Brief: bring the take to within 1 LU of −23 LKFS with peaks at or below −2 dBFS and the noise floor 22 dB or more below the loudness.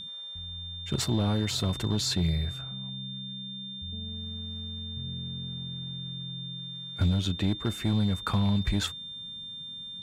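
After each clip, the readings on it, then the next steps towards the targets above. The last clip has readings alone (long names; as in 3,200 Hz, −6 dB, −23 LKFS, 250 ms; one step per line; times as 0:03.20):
share of clipped samples 0.8%; peaks flattened at −19.0 dBFS; interfering tone 3,600 Hz; level of the tone −38 dBFS; integrated loudness −31.0 LKFS; sample peak −19.0 dBFS; target loudness −23.0 LKFS
→ clipped peaks rebuilt −19 dBFS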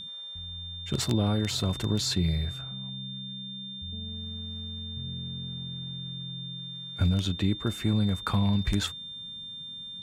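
share of clipped samples 0.0%; interfering tone 3,600 Hz; level of the tone −38 dBFS
→ notch filter 3,600 Hz, Q 30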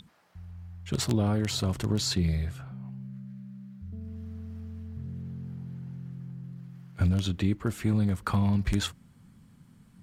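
interfering tone none found; integrated loudness −30.5 LKFS; sample peak −10.5 dBFS; target loudness −23.0 LKFS
→ level +7.5 dB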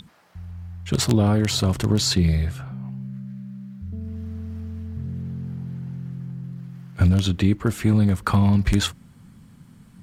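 integrated loudness −23.0 LKFS; sample peak −3.0 dBFS; background noise floor −50 dBFS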